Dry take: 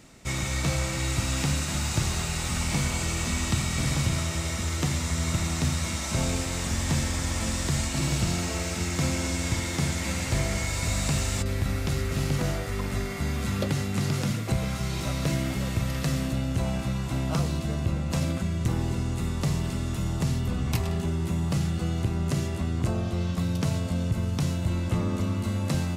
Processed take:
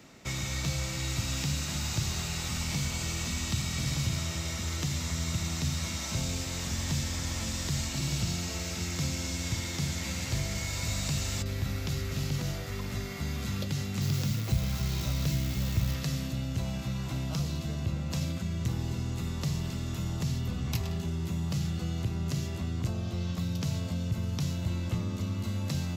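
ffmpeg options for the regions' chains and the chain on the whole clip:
ffmpeg -i in.wav -filter_complex "[0:a]asettb=1/sr,asplit=3[link_01][link_02][link_03];[link_01]atrim=end=14.014[link_04];[link_02]atrim=start=14.01:end=15.95,asetpts=PTS-STARTPTS,afade=type=in:duration=0.004:curve=qsin,afade=type=out:start_time=1.936:duration=0.004:curve=qsin,lowshelf=frequency=73:gain=12,acrusher=bits=7:dc=4:mix=0:aa=0.000001[link_05];[link_03]atrim=start=15.946[link_06];[link_04][link_05]acrossfade=duration=0.004:curve1=hsin:curve2=qsin[link_07];[link_07][link_06]acrossfade=duration=0.004:curve1=qsin:curve2=hsin,highpass=frequency=110:poles=1,equalizer=frequency=9200:width_type=o:width=0.37:gain=-13.5,acrossover=split=170|3000[link_08][link_09][link_10];[link_09]acompressor=threshold=-40dB:ratio=6[link_11];[link_08][link_11][link_10]amix=inputs=3:normalize=0" out.wav

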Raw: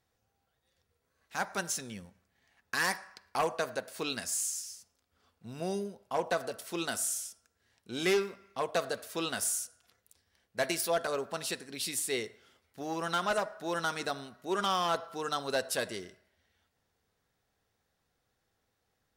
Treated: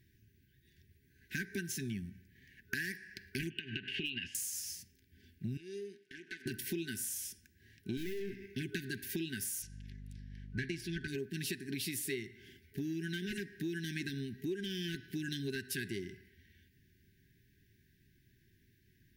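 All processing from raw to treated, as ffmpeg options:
ffmpeg -i in.wav -filter_complex "[0:a]asettb=1/sr,asplit=3[link_01][link_02][link_03];[link_01]atrim=end=3.504[link_04];[link_02]atrim=start=3.5:end=4.35,asetpts=PTS-STARTPTS,afade=type=in:duration=0.004:curve=qsin,afade=type=out:start_time=0.846:duration=0.004:curve=qsin,acompressor=threshold=-40dB:ratio=16:attack=3.2:release=140:knee=1:detection=peak,lowpass=frequency=2900:width_type=q:width=15,asoftclip=type=hard:threshold=-26dB[link_05];[link_03]atrim=start=4.346[link_06];[link_04][link_05]acrossfade=duration=0.004:curve1=hsin:curve2=qsin[link_07];[link_07][link_06]acrossfade=duration=0.004:curve1=qsin:curve2=hsin,asettb=1/sr,asplit=3[link_08][link_09][link_10];[link_08]atrim=end=5.574[link_11];[link_09]atrim=start=5.57:end=6.46,asetpts=PTS-STARTPTS,afade=type=in:duration=0.004:curve=qsin,afade=type=out:start_time=0.886:duration=0.004:curve=qsin,aeval=exprs='if(lt(val(0),0),0.251*val(0),val(0))':channel_layout=same,highpass=540,lowpass=7600,acompressor=threshold=-54dB:ratio=2:attack=3.2:release=140:knee=1:detection=peak[link_12];[link_10]atrim=start=6.456[link_13];[link_11][link_12]acrossfade=duration=0.004:curve1=hsin:curve2=qsin[link_14];[link_14][link_13]acrossfade=duration=0.004:curve1=qsin:curve2=hsin,asettb=1/sr,asplit=3[link_15][link_16][link_17];[link_15]atrim=end=7.974[link_18];[link_16]atrim=start=7.97:end=8.46,asetpts=PTS-STARTPTS,afade=type=in:duration=0.004:curve=qsin,afade=type=out:start_time=0.486:duration=0.004:curve=qsin,acontrast=82,aeval=exprs='(tanh(79.4*val(0)+0.65)-tanh(0.65))/79.4':channel_layout=same[link_19];[link_17]atrim=start=8.456[link_20];[link_18][link_19]acrossfade=duration=0.004:curve1=hsin:curve2=qsin[link_21];[link_21][link_20]acrossfade=duration=0.004:curve1=qsin:curve2=hsin,asettb=1/sr,asplit=3[link_22][link_23][link_24];[link_22]atrim=end=9.624[link_25];[link_23]atrim=start=9.62:end=11.08,asetpts=PTS-STARTPTS,afade=type=in:duration=0.004:curve=qsin,afade=type=out:start_time=1.456:duration=0.004:curve=qsin,lowpass=6100,asubboost=boost=3.5:cutoff=250,aeval=exprs='val(0)+0.000891*(sin(2*PI*50*n/s)+sin(2*PI*2*50*n/s)/2+sin(2*PI*3*50*n/s)/3+sin(2*PI*4*50*n/s)/4+sin(2*PI*5*50*n/s)/5)':channel_layout=same[link_26];[link_24]atrim=start=11.076[link_27];[link_25][link_26]acrossfade=duration=0.004:curve1=hsin:curve2=qsin[link_28];[link_28][link_27]acrossfade=duration=0.004:curve1=qsin:curve2=hsin,afftfilt=real='re*(1-between(b*sr/4096,410,1500))':imag='im*(1-between(b*sr/4096,410,1500))':win_size=4096:overlap=0.75,equalizer=frequency=125:width_type=o:width=1:gain=5,equalizer=frequency=1000:width_type=o:width=1:gain=-8,equalizer=frequency=4000:width_type=o:width=1:gain=-6,equalizer=frequency=8000:width_type=o:width=1:gain=-12,acompressor=threshold=-48dB:ratio=12,volume=12.5dB" out.wav

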